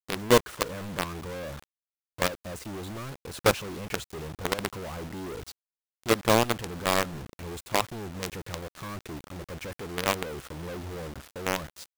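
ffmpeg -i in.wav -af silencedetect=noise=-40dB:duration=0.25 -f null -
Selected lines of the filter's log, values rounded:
silence_start: 1.64
silence_end: 2.18 | silence_duration: 0.55
silence_start: 5.52
silence_end: 6.04 | silence_duration: 0.52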